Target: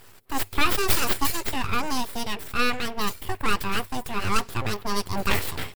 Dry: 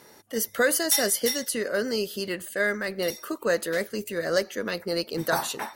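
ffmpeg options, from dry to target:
-af "asetrate=52444,aresample=44100,atempo=0.840896,aeval=exprs='abs(val(0))':c=same,equalizer=f=100:t=o:w=0.33:g=11,equalizer=f=400:t=o:w=0.33:g=6,equalizer=f=6.3k:t=o:w=0.33:g=-7,volume=4dB"

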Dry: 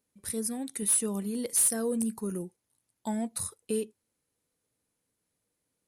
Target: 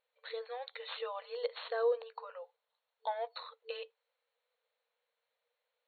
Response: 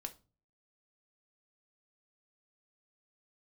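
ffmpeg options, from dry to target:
-filter_complex "[0:a]asettb=1/sr,asplit=3[a][b][c];[a]atrim=end=1.374[d];[b]atrim=start=1.37:end=3.37,asetpts=PTS-STARTPTS,afade=t=in:d=0.004:c=qsin,afade=t=out:st=1.996:d=0.004:c=qsin,equalizer=f=2.2k:t=o:w=0.77:g=-3.5[e];[c]atrim=start=3.366[f];[d][e]acrossfade=d=0.004:c1=hsin:c2=qsin[g];[g][f]acrossfade=d=0.004:c1=qsin:c2=hsin,afftfilt=real='re*between(b*sr/4096,450,4400)':imag='im*between(b*sr/4096,450,4400)':win_size=4096:overlap=0.75,adynamicequalizer=threshold=0.00178:dfrequency=1100:dqfactor=2.6:tfrequency=1100:tqfactor=2.6:attack=5:release=100:ratio=0.375:range=2:mode=boostabove:tftype=bell,volume=2dB"

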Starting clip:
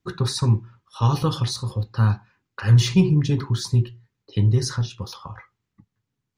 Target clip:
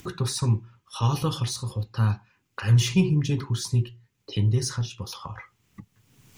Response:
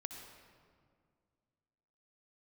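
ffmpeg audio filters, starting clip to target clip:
-af "highshelf=f=7.1k:g=-4.5,aexciter=amount=1:drive=9:freq=2.3k,acompressor=mode=upward:threshold=-25dB:ratio=2.5,volume=-4dB"

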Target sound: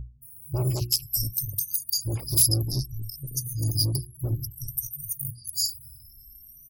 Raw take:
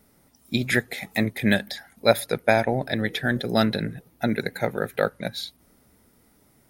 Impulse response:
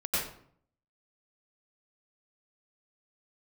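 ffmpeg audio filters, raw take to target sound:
-filter_complex "[0:a]afftfilt=real='re*pow(10,22/40*sin(2*PI*(1.7*log(max(b,1)*sr/1024/100)/log(2)-(0.59)*(pts-256)/sr)))':imag='im*pow(10,22/40*sin(2*PI*(1.7*log(max(b,1)*sr/1024/100)/log(2)-(0.59)*(pts-256)/sr)))':win_size=1024:overlap=0.75,aeval=exprs='val(0)+0.0178*(sin(2*PI*60*n/s)+sin(2*PI*2*60*n/s)/2+sin(2*PI*3*60*n/s)/3+sin(2*PI*4*60*n/s)/4+sin(2*PI*5*60*n/s)/5)':c=same,afftfilt=real='re*(1-between(b*sr/4096,150,4600))':imag='im*(1-between(b*sr/4096,150,4600))':win_size=4096:overlap=0.75,equalizer=f=250:t=o:w=1:g=-8,equalizer=f=500:t=o:w=1:g=10,equalizer=f=1k:t=o:w=1:g=-5,equalizer=f=2k:t=o:w=1:g=-12,equalizer=f=4k:t=o:w=1:g=-3,equalizer=f=8k:t=o:w=1:g=-9,volume=30dB,asoftclip=hard,volume=-30dB,aexciter=amount=2.6:drive=9.5:freq=2.3k,aemphasis=mode=reproduction:type=cd,acrossover=split=2400[a][b];[b]adelay=220[c];[a][c]amix=inputs=2:normalize=0,afftfilt=real='re*gte(hypot(re,im),0.00282)':imag='im*gte(hypot(re,im),0.00282)':win_size=1024:overlap=0.75,bandreject=f=60:t=h:w=6,bandreject=f=120:t=h:w=6,bandreject=f=180:t=h:w=6,bandreject=f=240:t=h:w=6,bandreject=f=300:t=h:w=6,bandreject=f=360:t=h:w=6,volume=7.5dB"

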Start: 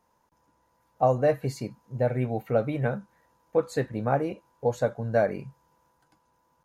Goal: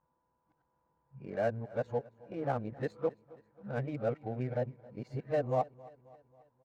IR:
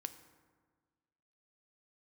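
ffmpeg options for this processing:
-af "areverse,adynamicsmooth=sensitivity=6:basefreq=1.8k,aecho=1:1:269|538|807|1076:0.0794|0.0429|0.0232|0.0125,volume=-8.5dB"

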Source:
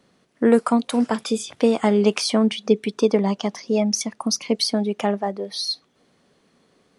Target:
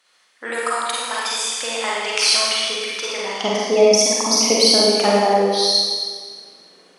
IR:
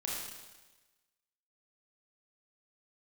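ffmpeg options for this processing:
-filter_complex "[0:a]asetnsamples=n=441:p=0,asendcmd='3.36 highpass f 340',highpass=1.4k[a];[1:a]atrim=start_sample=2205,asetrate=32634,aresample=44100[b];[a][b]afir=irnorm=-1:irlink=0,volume=5.5dB"

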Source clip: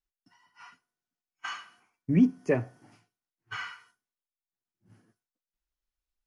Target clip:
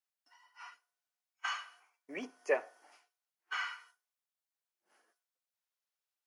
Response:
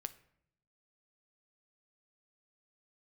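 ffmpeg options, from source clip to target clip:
-af "highpass=f=520:w=0.5412,highpass=f=520:w=1.3066"

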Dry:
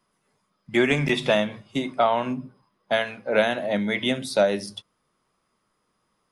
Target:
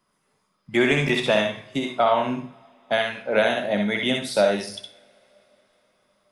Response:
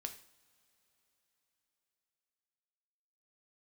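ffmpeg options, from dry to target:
-filter_complex "[0:a]asplit=2[a][b];[1:a]atrim=start_sample=2205,lowshelf=f=420:g=-10,adelay=64[c];[b][c]afir=irnorm=-1:irlink=0,volume=1dB[d];[a][d]amix=inputs=2:normalize=0"

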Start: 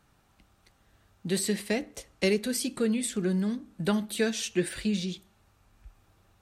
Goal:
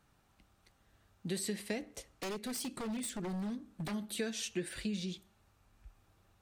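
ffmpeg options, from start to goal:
-filter_complex "[0:a]acompressor=threshold=-29dB:ratio=3,asettb=1/sr,asplit=3[a][b][c];[a]atrim=end=1.784[d];[b]atrim=start=1.78:end=3.94,asetpts=PTS-STARTPTS,afade=t=in:d=0.004:c=qsin,afade=t=out:st=2.156:d=0.004:c=qsin,aeval=exprs='0.0376*(abs(mod(val(0)/0.0376+3,4)-2)-1)':c=same[e];[c]atrim=start=3.936[f];[d][e]acrossfade=d=0.004:c1=hsin:c2=qsin[g];[g][f]acrossfade=d=0.004:c1=qsin:c2=hsin,volume=-5dB"

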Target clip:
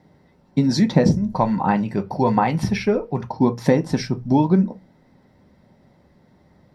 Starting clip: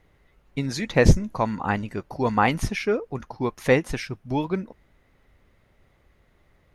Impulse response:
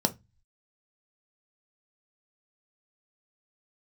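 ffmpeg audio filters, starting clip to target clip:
-filter_complex "[0:a]asettb=1/sr,asplit=3[a][b][c];[a]atrim=end=1.344[d];[b]atrim=start=1.34:end=3.36,asetpts=PTS-STARTPTS,afade=t=in:d=0.004:c=qsin,afade=t=out:st=2.016:d=0.004:c=qsin,equalizer=f=250:t=o:w=0.67:g=-7,equalizer=f=2.5k:t=o:w=0.67:g=6,equalizer=f=6.3k:t=o:w=0.67:g=-5[e];[c]atrim=start=3.356[f];[d][e]acrossfade=d=0.004:c1=hsin:c2=qsin[g];[g][f]acrossfade=d=0.004:c1=qsin:c2=hsin,acompressor=threshold=-22dB:ratio=6[h];[1:a]atrim=start_sample=2205[i];[h][i]afir=irnorm=-1:irlink=0,volume=-4.5dB"

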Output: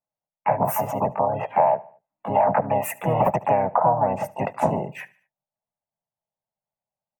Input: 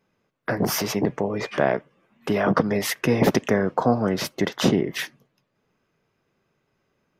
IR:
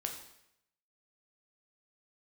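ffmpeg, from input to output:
-filter_complex "[0:a]afftdn=nr=26:nf=-33,firequalizer=gain_entry='entry(140,0);entry(260,-16);entry(410,-10);entry(630,13);entry(1100,-9);entry(2000,-6);entry(2800,-30);entry(5000,-27);entry(7400,1);entry(14000,2)':delay=0.05:min_phase=1,asplit=2[a][b];[b]asetrate=58866,aresample=44100,atempo=0.749154,volume=-1dB[c];[a][c]amix=inputs=2:normalize=0,acompressor=threshold=-15dB:ratio=6,aecho=1:1:74|148|222:0.0841|0.0395|0.0186"

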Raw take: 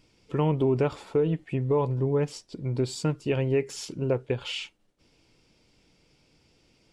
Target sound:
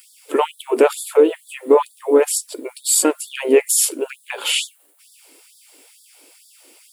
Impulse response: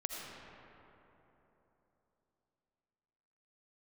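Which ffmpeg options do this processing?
-filter_complex "[0:a]aexciter=amount=11.8:drive=5:freq=8.2k,asplit=2[a][b];[b]asetrate=52444,aresample=44100,atempo=0.840896,volume=-15dB[c];[a][c]amix=inputs=2:normalize=0,acontrast=70,afftfilt=real='re*gte(b*sr/1024,240*pow(3400/240,0.5+0.5*sin(2*PI*2.2*pts/sr)))':imag='im*gte(b*sr/1024,240*pow(3400/240,0.5+0.5*sin(2*PI*2.2*pts/sr)))':win_size=1024:overlap=0.75,volume=7dB"

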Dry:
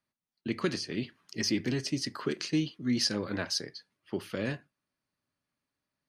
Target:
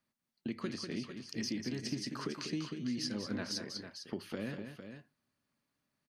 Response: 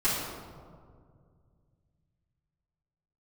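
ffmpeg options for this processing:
-af "equalizer=f=220:t=o:w=0.61:g=5.5,acompressor=threshold=-40dB:ratio=3,aecho=1:1:194|453:0.422|0.335,volume=1dB"

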